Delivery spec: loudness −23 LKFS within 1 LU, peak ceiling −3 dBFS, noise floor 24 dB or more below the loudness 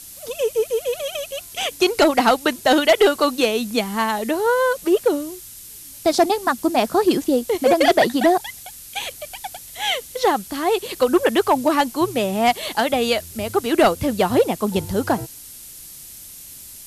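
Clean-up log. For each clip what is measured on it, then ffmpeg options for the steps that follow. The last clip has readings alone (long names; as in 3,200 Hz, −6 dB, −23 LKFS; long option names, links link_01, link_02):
background noise floor −40 dBFS; target noise floor −44 dBFS; integrated loudness −19.5 LKFS; sample peak −6.5 dBFS; target loudness −23.0 LKFS
→ -af "afftdn=noise_reduction=6:noise_floor=-40"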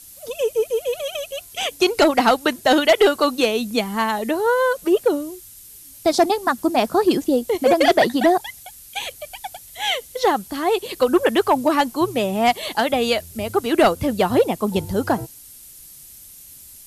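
background noise floor −43 dBFS; target noise floor −44 dBFS
→ -af "afftdn=noise_reduction=6:noise_floor=-43"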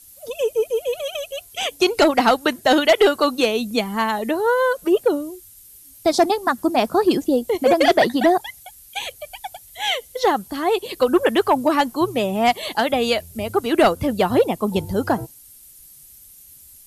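background noise floor −46 dBFS; integrated loudness −19.5 LKFS; sample peak −6.5 dBFS; target loudness −23.0 LKFS
→ -af "volume=-3.5dB"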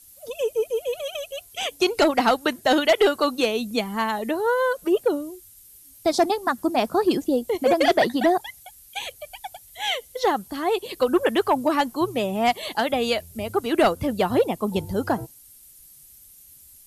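integrated loudness −23.0 LKFS; sample peak −10.0 dBFS; background noise floor −50 dBFS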